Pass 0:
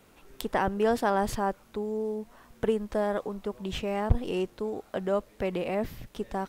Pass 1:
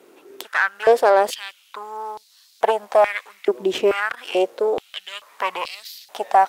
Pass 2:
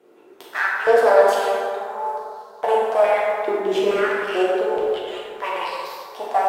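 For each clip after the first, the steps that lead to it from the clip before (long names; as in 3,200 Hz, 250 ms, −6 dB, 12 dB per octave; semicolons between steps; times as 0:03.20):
harmonic generator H 8 −20 dB, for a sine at −9 dBFS; speech leveller 2 s; high-pass on a step sequencer 2.3 Hz 360–4,300 Hz; level +6.5 dB
dense smooth reverb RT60 2.7 s, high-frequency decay 0.45×, DRR −6 dB; one half of a high-frequency compander decoder only; level −6.5 dB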